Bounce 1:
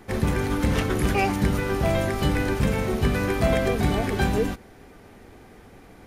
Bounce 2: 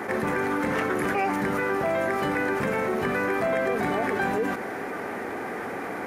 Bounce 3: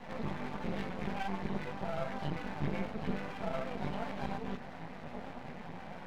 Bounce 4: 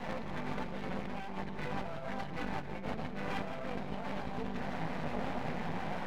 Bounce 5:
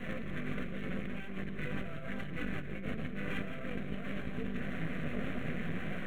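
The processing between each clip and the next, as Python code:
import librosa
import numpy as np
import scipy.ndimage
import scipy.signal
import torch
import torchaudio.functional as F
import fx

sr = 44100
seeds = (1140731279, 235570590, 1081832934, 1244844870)

y1 = scipy.signal.sosfilt(scipy.signal.bessel(2, 360.0, 'highpass', norm='mag', fs=sr, output='sos'), x)
y1 = fx.high_shelf_res(y1, sr, hz=2500.0, db=-9.0, q=1.5)
y1 = fx.env_flatten(y1, sr, amount_pct=70)
y1 = F.gain(torch.from_numpy(y1), -2.0).numpy()
y2 = fx.curve_eq(y1, sr, hz=(110.0, 170.0, 250.0, 360.0, 550.0, 910.0, 1300.0, 3800.0, 12000.0), db=(0, 9, -1, -22, -2, -4, -14, 1, -30))
y2 = fx.chorus_voices(y2, sr, voices=6, hz=0.79, base_ms=16, depth_ms=4.8, mix_pct=55)
y2 = np.maximum(y2, 0.0)
y2 = F.gain(torch.from_numpy(y2), -2.0).numpy()
y3 = fx.over_compress(y2, sr, threshold_db=-42.0, ratio=-1.0)
y3 = y3 + 10.0 ** (-9.0 / 20.0) * np.pad(y3, (int(169 * sr / 1000.0), 0))[:len(y3)]
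y3 = F.gain(torch.from_numpy(y3), 3.5).numpy()
y4 = fx.fixed_phaser(y3, sr, hz=2100.0, stages=4)
y4 = F.gain(torch.from_numpy(y4), 2.5).numpy()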